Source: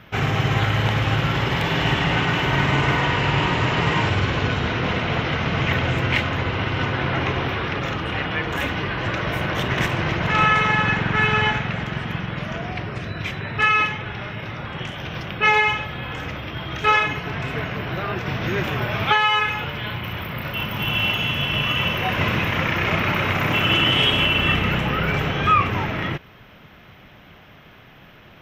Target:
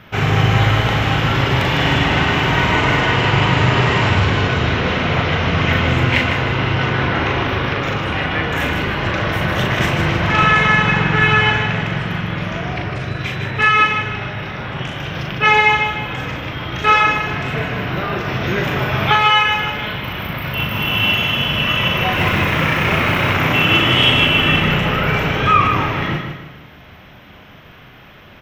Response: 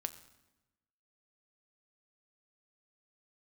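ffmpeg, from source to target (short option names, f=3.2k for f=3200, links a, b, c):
-filter_complex "[0:a]asettb=1/sr,asplit=3[a][b][c];[a]atrim=end=22.134[d];[b]atrim=start=22.13:end=23.3,asetpts=PTS-STARTPTS,afade=t=in:d=0.004:c=qsin,afade=t=out:st=1.166:d=0.004:c=qsin,acrusher=bits=7:mode=log:mix=0:aa=0.000001[e];[c]atrim=start=23.296[f];[d][e]acrossfade=d=0.004:c1=hsin:c2=qsin[g];[g][f]acrossfade=d=0.004:c1=qsin:c2=hsin,aecho=1:1:154|308|462|616:0.447|0.17|0.0645|0.0245,asplit=2[h][i];[1:a]atrim=start_sample=2205,adelay=39[j];[i][j]afir=irnorm=-1:irlink=0,volume=-3.5dB[k];[h][k]amix=inputs=2:normalize=0,volume=3dB"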